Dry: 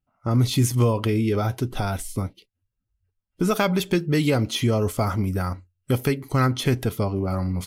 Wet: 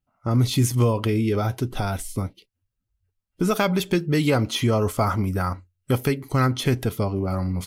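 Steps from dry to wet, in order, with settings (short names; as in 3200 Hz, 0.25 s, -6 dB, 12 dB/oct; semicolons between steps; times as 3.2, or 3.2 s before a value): 4.25–5.99 dynamic EQ 1100 Hz, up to +5 dB, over -40 dBFS, Q 1.1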